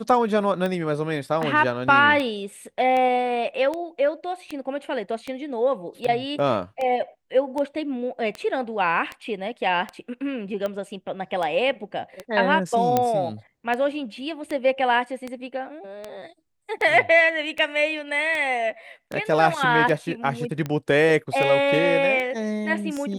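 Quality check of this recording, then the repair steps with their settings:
tick 78 rpm -16 dBFS
12.97 s: pop -7 dBFS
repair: de-click

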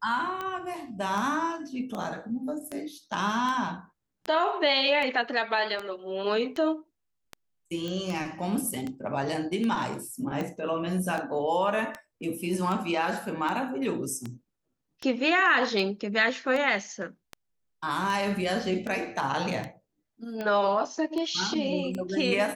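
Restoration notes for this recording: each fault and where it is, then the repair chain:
tick 78 rpm -20 dBFS
7.88 s: pop -21 dBFS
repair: de-click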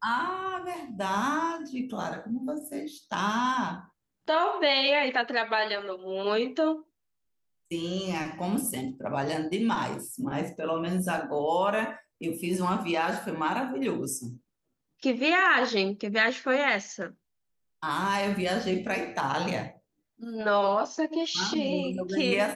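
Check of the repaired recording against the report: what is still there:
nothing left

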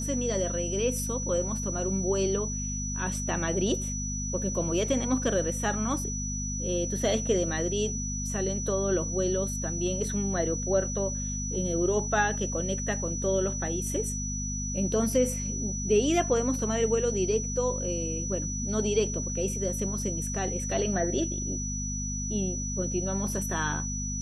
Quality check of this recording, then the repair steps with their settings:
hum 50 Hz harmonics 5 -34 dBFS
whine 5.9 kHz -34 dBFS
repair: band-stop 5.9 kHz, Q 30; de-hum 50 Hz, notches 5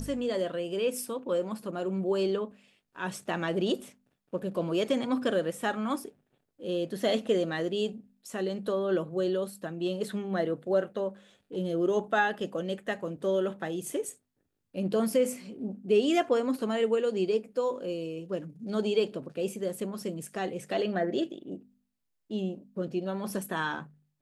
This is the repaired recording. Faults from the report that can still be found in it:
nothing left

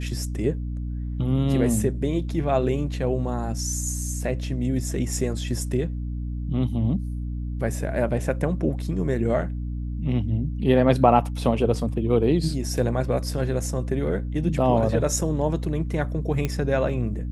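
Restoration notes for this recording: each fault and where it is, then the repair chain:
hum 60 Hz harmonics 5 -29 dBFS
16.45 s: pop -12 dBFS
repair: de-click; de-hum 60 Hz, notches 5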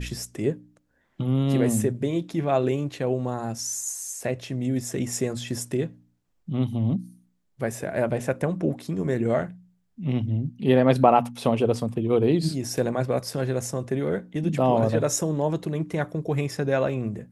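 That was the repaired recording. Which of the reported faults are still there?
nothing left

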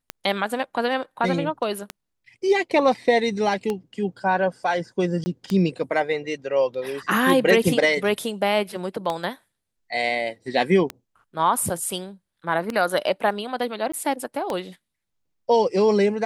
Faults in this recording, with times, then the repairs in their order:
tick 33 1/3 rpm -12 dBFS
5.24–5.26 s: dropout 20 ms
13.92–13.94 s: dropout 15 ms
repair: de-click; interpolate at 5.24 s, 20 ms; interpolate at 13.92 s, 15 ms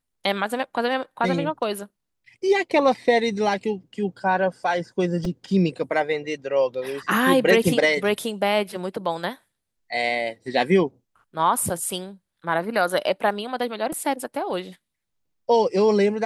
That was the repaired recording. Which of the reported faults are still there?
nothing left

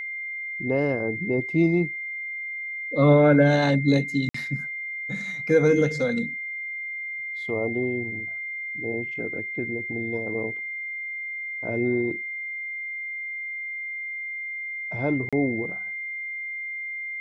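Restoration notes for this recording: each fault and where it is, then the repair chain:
whine 2.1 kHz -30 dBFS
4.29–4.34 s: dropout 54 ms
15.29–15.33 s: dropout 36 ms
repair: band-stop 2.1 kHz, Q 30; interpolate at 4.29 s, 54 ms; interpolate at 15.29 s, 36 ms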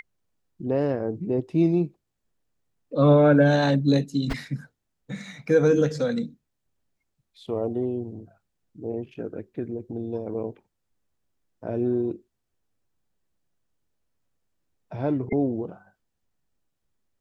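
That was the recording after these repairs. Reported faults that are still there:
nothing left

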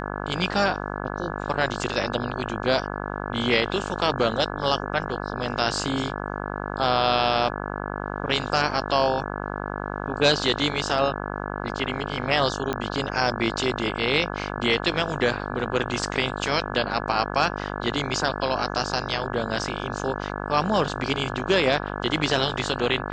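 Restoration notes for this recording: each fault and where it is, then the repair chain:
buzz 50 Hz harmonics 34 -31 dBFS
12.73 s: pop -13 dBFS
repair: de-click; de-hum 50 Hz, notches 34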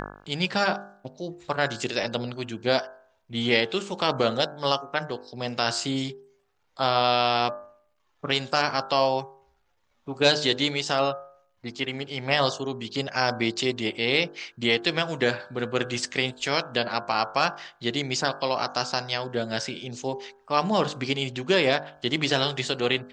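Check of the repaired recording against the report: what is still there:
nothing left

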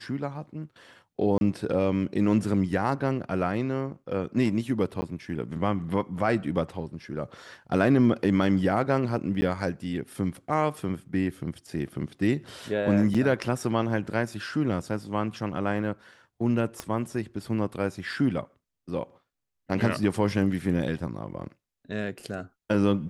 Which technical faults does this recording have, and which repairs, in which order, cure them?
1.38–1.41 s: dropout 31 ms
5.01–5.02 s: dropout 10 ms
9.41–9.42 s: dropout 10 ms
13.14–13.15 s: dropout 5.7 ms
16.80 s: pop -17 dBFS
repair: de-click; interpolate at 1.38 s, 31 ms; interpolate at 5.01 s, 10 ms; interpolate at 9.41 s, 10 ms; interpolate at 13.14 s, 5.7 ms

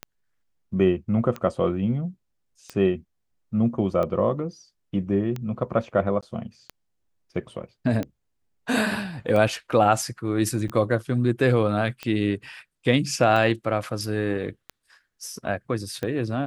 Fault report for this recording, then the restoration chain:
tick 45 rpm -17 dBFS
6.21–6.23 s: dropout 16 ms
10.68–10.69 s: dropout 7.4 ms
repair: de-click; interpolate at 6.21 s, 16 ms; interpolate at 10.68 s, 7.4 ms

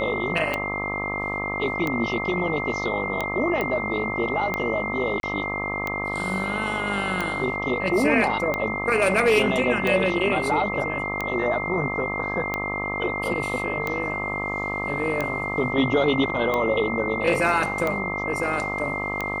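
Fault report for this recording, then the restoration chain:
buzz 50 Hz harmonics 26 -31 dBFS
tick 45 rpm -12 dBFS
whine 2.1 kHz -28 dBFS
3.61 s: pop -13 dBFS
5.20–5.23 s: dropout 32 ms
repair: de-click; de-hum 50 Hz, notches 26; band-stop 2.1 kHz, Q 30; interpolate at 5.20 s, 32 ms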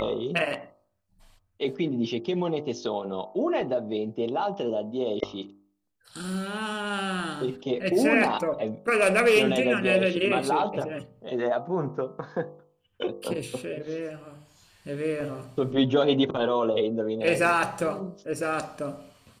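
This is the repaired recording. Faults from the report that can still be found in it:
nothing left

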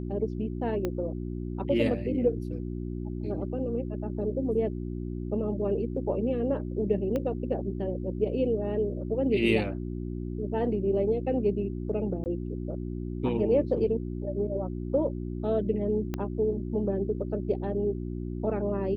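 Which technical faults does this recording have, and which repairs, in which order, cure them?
hum 60 Hz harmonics 6 -34 dBFS
0.85 s: pop -17 dBFS
7.16 s: pop -19 dBFS
12.24–12.26 s: dropout 19 ms
16.14 s: pop -18 dBFS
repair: de-click; de-hum 60 Hz, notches 6; interpolate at 12.24 s, 19 ms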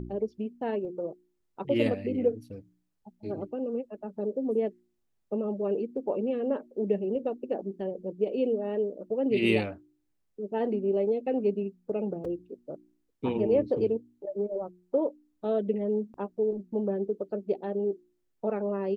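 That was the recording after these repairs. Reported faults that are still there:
0.85 s: pop
7.16 s: pop
16.14 s: pop

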